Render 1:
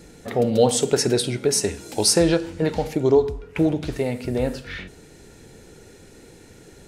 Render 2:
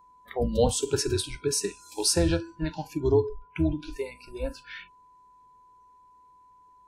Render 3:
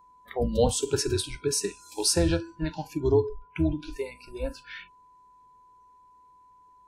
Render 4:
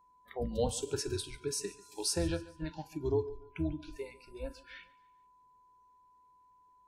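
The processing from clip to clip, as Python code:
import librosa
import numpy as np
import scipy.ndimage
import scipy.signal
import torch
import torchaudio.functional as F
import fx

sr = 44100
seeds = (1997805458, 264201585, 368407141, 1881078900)

y1 = fx.octave_divider(x, sr, octaves=2, level_db=0.0)
y1 = fx.noise_reduce_blind(y1, sr, reduce_db=23)
y1 = y1 + 10.0 ** (-48.0 / 20.0) * np.sin(2.0 * np.pi * 1000.0 * np.arange(len(y1)) / sr)
y1 = y1 * librosa.db_to_amplitude(-6.0)
y2 = y1
y3 = fx.echo_feedback(y2, sr, ms=143, feedback_pct=42, wet_db=-20)
y3 = y3 * librosa.db_to_amplitude(-9.0)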